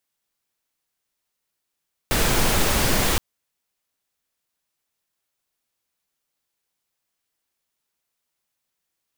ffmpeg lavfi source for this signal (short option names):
-f lavfi -i "anoisesrc=c=pink:a=0.543:d=1.07:r=44100:seed=1"